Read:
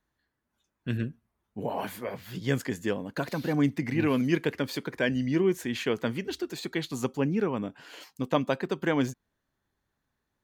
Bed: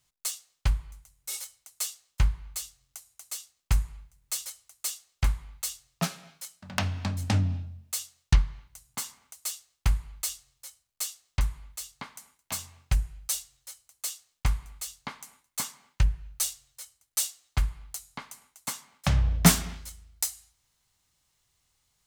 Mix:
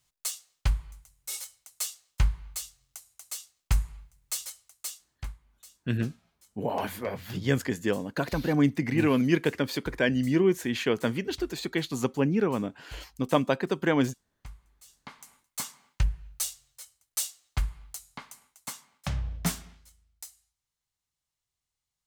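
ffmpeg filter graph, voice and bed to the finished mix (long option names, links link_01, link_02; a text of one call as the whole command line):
ffmpeg -i stem1.wav -i stem2.wav -filter_complex "[0:a]adelay=5000,volume=2dB[link_01];[1:a]volume=16.5dB,afade=type=out:start_time=4.51:duration=0.88:silence=0.112202,afade=type=in:start_time=14.82:duration=0.53:silence=0.141254,afade=type=out:start_time=18.32:duration=1.41:silence=0.237137[link_02];[link_01][link_02]amix=inputs=2:normalize=0" out.wav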